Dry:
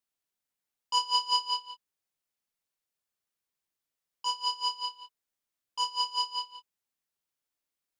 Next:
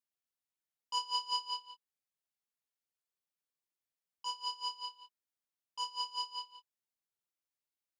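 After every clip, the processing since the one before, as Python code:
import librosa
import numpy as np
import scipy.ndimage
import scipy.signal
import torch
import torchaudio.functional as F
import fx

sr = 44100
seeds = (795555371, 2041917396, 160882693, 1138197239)

y = scipy.signal.sosfilt(scipy.signal.butter(2, 46.0, 'highpass', fs=sr, output='sos'), x)
y = y * librosa.db_to_amplitude(-8.0)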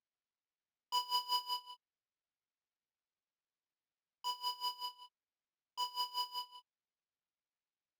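y = scipy.signal.medfilt(x, 5)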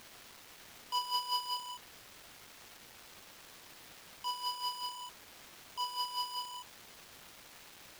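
y = x + 0.5 * 10.0 ** (-41.0 / 20.0) * np.sign(x)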